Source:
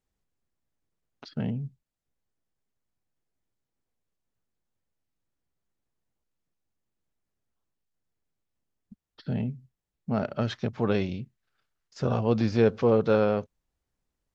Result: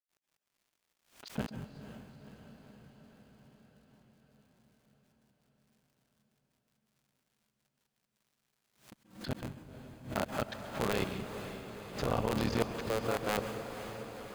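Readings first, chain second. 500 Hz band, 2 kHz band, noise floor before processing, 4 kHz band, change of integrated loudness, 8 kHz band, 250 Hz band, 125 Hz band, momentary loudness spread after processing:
-9.5 dB, -1.0 dB, under -85 dBFS, +0.5 dB, -9.5 dB, n/a, -9.5 dB, -9.5 dB, 21 LU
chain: cycle switcher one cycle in 3, muted; expander -51 dBFS; low shelf 450 Hz -8 dB; notch 5600 Hz, Q 12; in parallel at +1 dB: limiter -19.5 dBFS, peak gain reduction 8.5 dB; on the sum: level quantiser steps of 10 dB; crackle 290/s -61 dBFS; step gate ".x.x.xxxxxxx.x" 164 bpm -60 dB; diffused feedback echo 0.503 s, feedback 68%, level -10 dB; plate-style reverb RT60 0.75 s, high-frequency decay 0.85×, pre-delay 0.12 s, DRR 10 dB; backwards sustainer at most 140 dB/s; gain -2 dB

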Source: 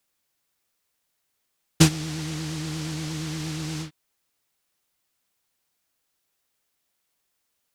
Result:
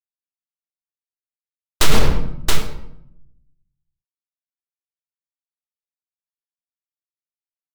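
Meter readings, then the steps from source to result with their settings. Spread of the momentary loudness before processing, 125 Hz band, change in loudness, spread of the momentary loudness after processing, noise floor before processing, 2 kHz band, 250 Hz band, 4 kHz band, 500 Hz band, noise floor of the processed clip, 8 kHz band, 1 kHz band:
12 LU, -1.5 dB, +5.5 dB, 15 LU, -76 dBFS, +6.5 dB, -3.5 dB, +4.5 dB, +7.0 dB, under -85 dBFS, +2.0 dB, +9.0 dB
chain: level-crossing sampler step -14.5 dBFS; HPF 720 Hz 24 dB/oct; compressor 6:1, threshold -29 dBFS, peak gain reduction 11 dB; gate -30 dBFS, range -47 dB; full-wave rectifier; echo 0.673 s -18 dB; shoebox room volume 2100 m³, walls furnished, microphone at 3.1 m; maximiser +34.5 dB; Doppler distortion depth 0.57 ms

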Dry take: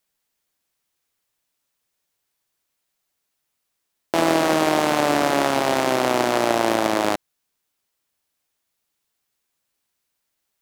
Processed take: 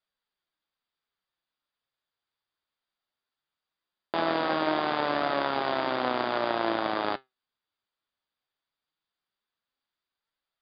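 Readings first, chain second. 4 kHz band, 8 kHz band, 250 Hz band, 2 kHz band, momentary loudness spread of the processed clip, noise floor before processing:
-7.5 dB, under -40 dB, -10.0 dB, -7.0 dB, 4 LU, -77 dBFS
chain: rippled Chebyshev low-pass 4900 Hz, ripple 6 dB; flange 0.19 Hz, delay 1.4 ms, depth 8.3 ms, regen +75%

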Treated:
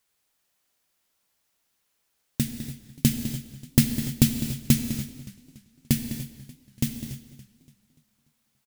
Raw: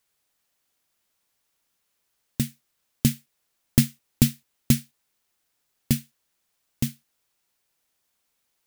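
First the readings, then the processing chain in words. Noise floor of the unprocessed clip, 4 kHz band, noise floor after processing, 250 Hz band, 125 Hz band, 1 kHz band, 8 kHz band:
-76 dBFS, +1.0 dB, -74 dBFS, +1.0 dB, +0.5 dB, +1.0 dB, +1.0 dB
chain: outdoor echo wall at 35 m, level -12 dB; non-linear reverb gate 0.33 s flat, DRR 6.5 dB; warbling echo 0.288 s, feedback 45%, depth 155 cents, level -18 dB

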